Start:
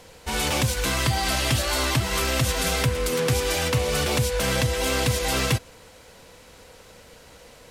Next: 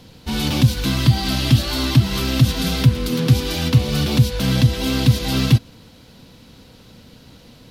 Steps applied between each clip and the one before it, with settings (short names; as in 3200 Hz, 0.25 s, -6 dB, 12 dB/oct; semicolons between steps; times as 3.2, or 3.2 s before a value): ten-band EQ 125 Hz +8 dB, 250 Hz +10 dB, 500 Hz -7 dB, 1000 Hz -3 dB, 2000 Hz -6 dB, 4000 Hz +6 dB, 8000 Hz -10 dB; gain +2 dB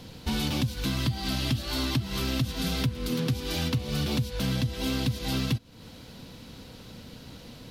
compressor 5:1, threshold -26 dBFS, peak gain reduction 16.5 dB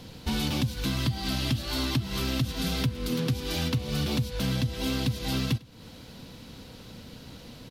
echo 0.101 s -24 dB